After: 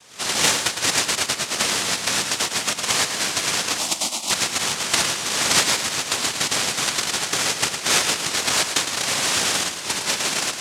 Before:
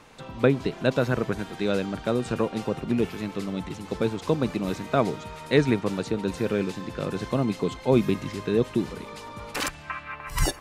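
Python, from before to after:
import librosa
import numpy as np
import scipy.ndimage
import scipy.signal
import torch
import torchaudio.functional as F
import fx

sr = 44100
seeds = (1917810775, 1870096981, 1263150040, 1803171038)

y = np.r_[np.sort(x[:len(x) // 128 * 128].reshape(-1, 128), axis=1).ravel(), x[len(x) // 128 * 128:]]
y = fx.recorder_agc(y, sr, target_db=-13.5, rise_db_per_s=63.0, max_gain_db=30)
y = fx.noise_vocoder(y, sr, seeds[0], bands=1)
y = fx.fixed_phaser(y, sr, hz=440.0, stages=6, at=(3.78, 4.31))
y = fx.echo_feedback(y, sr, ms=109, feedback_pct=41, wet_db=-8)
y = fx.band_squash(y, sr, depth_pct=100, at=(0.91, 1.35))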